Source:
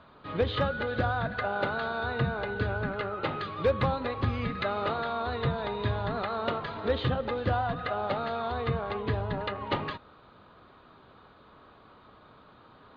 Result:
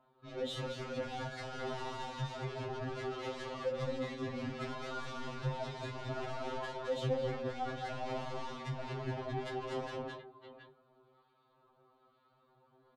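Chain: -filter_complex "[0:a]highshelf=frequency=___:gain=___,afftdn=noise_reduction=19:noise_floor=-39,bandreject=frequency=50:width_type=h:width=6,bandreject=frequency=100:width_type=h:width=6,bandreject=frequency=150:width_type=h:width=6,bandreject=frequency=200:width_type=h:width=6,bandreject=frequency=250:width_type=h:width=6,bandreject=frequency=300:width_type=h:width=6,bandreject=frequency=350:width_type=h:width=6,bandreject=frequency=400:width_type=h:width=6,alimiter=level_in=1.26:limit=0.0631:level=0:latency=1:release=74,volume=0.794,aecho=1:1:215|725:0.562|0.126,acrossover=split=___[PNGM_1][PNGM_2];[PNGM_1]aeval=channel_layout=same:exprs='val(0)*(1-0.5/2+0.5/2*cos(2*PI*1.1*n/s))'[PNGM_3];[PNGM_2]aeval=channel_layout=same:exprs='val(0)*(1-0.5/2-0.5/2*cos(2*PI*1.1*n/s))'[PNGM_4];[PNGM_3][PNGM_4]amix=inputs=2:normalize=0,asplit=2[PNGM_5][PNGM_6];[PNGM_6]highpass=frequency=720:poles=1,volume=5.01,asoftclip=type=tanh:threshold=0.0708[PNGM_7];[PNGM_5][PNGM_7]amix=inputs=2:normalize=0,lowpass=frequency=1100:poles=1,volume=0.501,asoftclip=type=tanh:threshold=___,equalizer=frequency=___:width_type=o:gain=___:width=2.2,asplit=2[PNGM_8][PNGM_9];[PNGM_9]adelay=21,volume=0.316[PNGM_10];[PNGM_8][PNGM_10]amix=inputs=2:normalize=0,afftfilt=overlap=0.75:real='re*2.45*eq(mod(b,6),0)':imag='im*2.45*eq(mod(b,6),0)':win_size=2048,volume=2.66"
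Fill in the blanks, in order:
3700, 7, 1400, 0.0141, 1700, -10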